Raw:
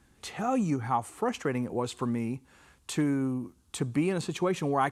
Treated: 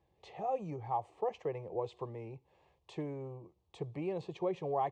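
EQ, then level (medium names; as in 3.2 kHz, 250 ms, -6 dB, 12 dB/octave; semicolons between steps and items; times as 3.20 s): high-pass 230 Hz 6 dB/octave; tape spacing loss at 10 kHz 38 dB; static phaser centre 600 Hz, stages 4; 0.0 dB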